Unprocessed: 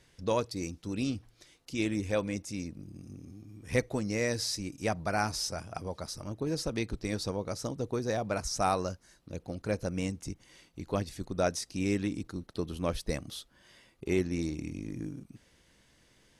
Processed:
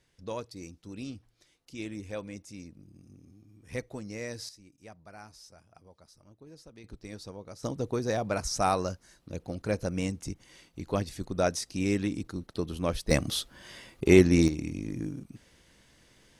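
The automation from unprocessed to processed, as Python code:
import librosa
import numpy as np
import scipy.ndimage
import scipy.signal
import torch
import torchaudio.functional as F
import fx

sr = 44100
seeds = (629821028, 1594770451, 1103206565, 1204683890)

y = fx.gain(x, sr, db=fx.steps((0.0, -7.5), (4.49, -18.5), (6.84, -9.5), (7.63, 2.0), (13.11, 11.0), (14.48, 3.5)))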